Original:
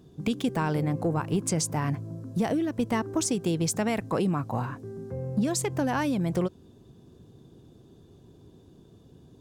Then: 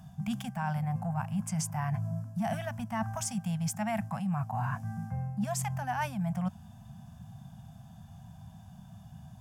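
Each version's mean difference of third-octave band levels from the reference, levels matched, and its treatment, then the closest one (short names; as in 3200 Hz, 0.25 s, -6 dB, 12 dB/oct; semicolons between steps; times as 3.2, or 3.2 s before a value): 8.5 dB: Chebyshev band-stop 210–680 Hz, order 3; harmonic-percussive split harmonic +8 dB; thirty-one-band EQ 800 Hz +7 dB, 1600 Hz +4 dB, 4000 Hz -12 dB, 12500 Hz +5 dB; reverse; compressor 6:1, threshold -30 dBFS, peak gain reduction 14.5 dB; reverse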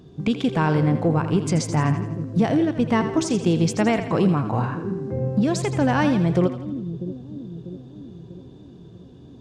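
4.5 dB: high shelf 2000 Hz +10 dB; harmonic-percussive split harmonic +4 dB; tape spacing loss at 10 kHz 23 dB; split-band echo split 410 Hz, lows 0.644 s, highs 83 ms, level -10 dB; gain +4 dB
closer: second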